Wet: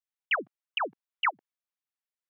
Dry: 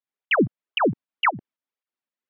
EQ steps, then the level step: HPF 810 Hz 12 dB/oct; -5.5 dB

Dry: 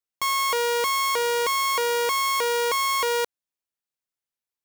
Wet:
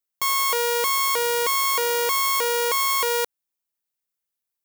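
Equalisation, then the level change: high shelf 9700 Hz +10.5 dB; 0.0 dB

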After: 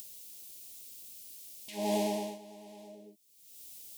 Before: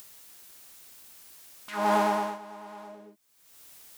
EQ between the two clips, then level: Butterworth band-stop 1300 Hz, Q 0.64; high shelf 4600 Hz +4.5 dB; -2.0 dB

